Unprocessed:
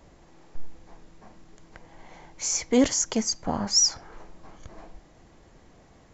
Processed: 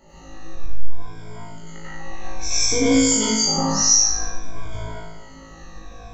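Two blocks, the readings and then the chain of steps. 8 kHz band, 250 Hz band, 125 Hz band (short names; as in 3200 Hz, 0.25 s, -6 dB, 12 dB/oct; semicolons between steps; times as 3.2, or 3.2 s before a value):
n/a, +6.0 dB, +11.5 dB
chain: moving spectral ripple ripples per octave 1.7, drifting -0.57 Hz, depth 19 dB; low shelf 62 Hz +8 dB; compressor 2:1, threshold -28 dBFS, peak gain reduction 12 dB; on a send: flutter echo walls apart 3.2 m, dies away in 0.73 s; on the sum: plate-style reverb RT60 0.52 s, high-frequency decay 1×, pre-delay 80 ms, DRR -7.5 dB; gain -3.5 dB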